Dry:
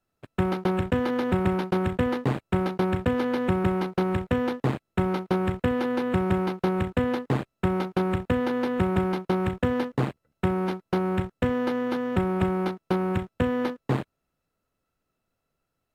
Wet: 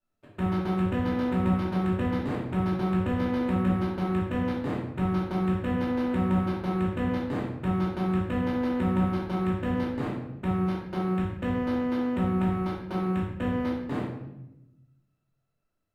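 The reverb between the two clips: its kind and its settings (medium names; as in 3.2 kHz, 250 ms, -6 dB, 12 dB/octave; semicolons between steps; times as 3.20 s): simulated room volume 320 m³, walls mixed, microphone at 2.6 m; trim -12 dB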